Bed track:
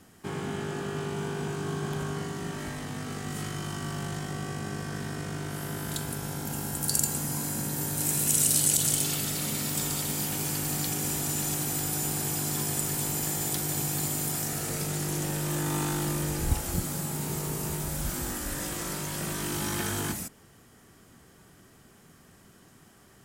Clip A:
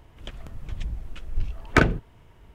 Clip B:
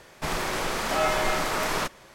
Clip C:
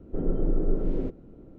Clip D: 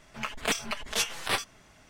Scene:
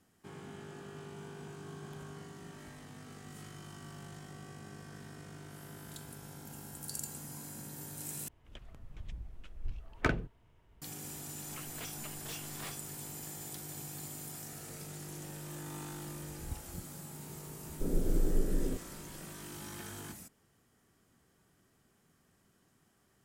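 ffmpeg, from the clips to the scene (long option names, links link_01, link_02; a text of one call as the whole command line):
ffmpeg -i bed.wav -i cue0.wav -i cue1.wav -i cue2.wav -i cue3.wav -filter_complex "[0:a]volume=-14.5dB[link_01];[4:a]asoftclip=type=hard:threshold=-28.5dB[link_02];[3:a]lowshelf=frequency=440:gain=4[link_03];[link_01]asplit=2[link_04][link_05];[link_04]atrim=end=8.284[link_06];[1:a]atrim=end=2.54,asetpts=PTS-STARTPTS,volume=-12.5dB[link_07];[link_05]atrim=start=10.816[link_08];[link_02]atrim=end=1.89,asetpts=PTS-STARTPTS,volume=-13.5dB,afade=type=in:duration=0.004:curve=hsin,afade=type=out:start_time=1.886:duration=0.004:curve=hsin,adelay=11330[link_09];[link_03]atrim=end=1.58,asetpts=PTS-STARTPTS,volume=-8.5dB,afade=type=in:duration=0.004:curve=hsin,afade=type=out:start_time=1.576:duration=0.004:curve=hsin,adelay=17670[link_10];[link_06][link_07]acrossfade=duration=0.004:curve1=hsin:curve2=hsin[link_11];[link_11][link_08]acrossfade=duration=0.004:curve1=hsin:curve2=hsin[link_12];[link_12][link_09][link_10]amix=inputs=3:normalize=0" out.wav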